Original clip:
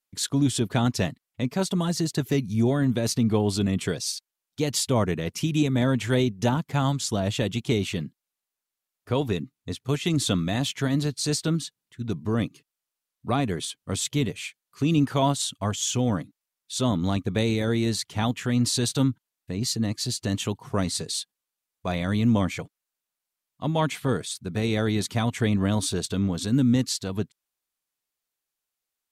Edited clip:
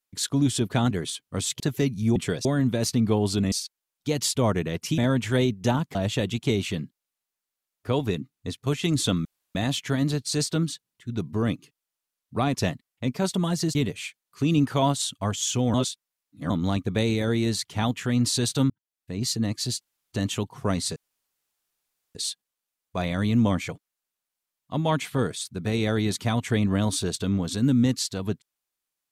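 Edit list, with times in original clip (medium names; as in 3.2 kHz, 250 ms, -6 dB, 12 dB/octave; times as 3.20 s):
0.91–2.12 s: swap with 13.46–14.15 s
3.75–4.04 s: move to 2.68 s
5.50–5.76 s: delete
6.73–7.17 s: delete
10.47 s: insert room tone 0.30 s
16.14–16.90 s: reverse
19.10–19.64 s: fade in
20.21 s: insert room tone 0.31 s
21.05 s: insert room tone 1.19 s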